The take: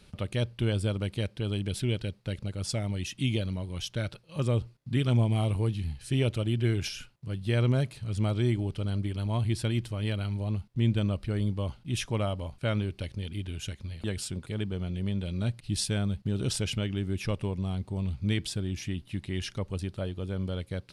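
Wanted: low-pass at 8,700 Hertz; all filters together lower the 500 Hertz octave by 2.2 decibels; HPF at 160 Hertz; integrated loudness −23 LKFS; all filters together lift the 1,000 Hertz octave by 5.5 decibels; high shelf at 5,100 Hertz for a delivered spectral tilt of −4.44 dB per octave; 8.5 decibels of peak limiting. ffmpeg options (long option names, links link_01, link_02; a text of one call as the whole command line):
ffmpeg -i in.wav -af "highpass=160,lowpass=8700,equalizer=frequency=500:width_type=o:gain=-5,equalizer=frequency=1000:width_type=o:gain=8.5,highshelf=frequency=5100:gain=8,volume=12.5dB,alimiter=limit=-9.5dB:level=0:latency=1" out.wav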